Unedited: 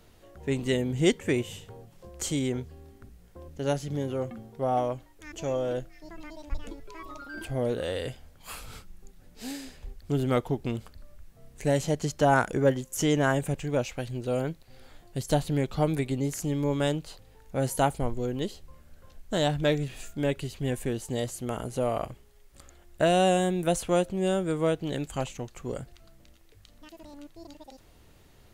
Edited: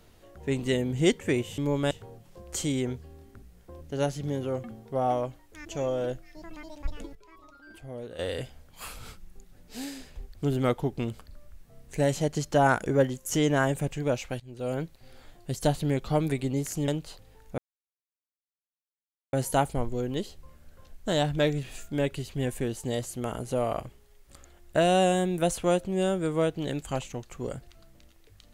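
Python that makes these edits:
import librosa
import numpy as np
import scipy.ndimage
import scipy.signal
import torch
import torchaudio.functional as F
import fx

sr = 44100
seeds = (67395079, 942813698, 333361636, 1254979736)

y = fx.edit(x, sr, fx.clip_gain(start_s=6.82, length_s=1.04, db=-11.0),
    fx.fade_in_from(start_s=14.07, length_s=0.42, floor_db=-21.0),
    fx.move(start_s=16.55, length_s=0.33, to_s=1.58),
    fx.insert_silence(at_s=17.58, length_s=1.75), tone=tone)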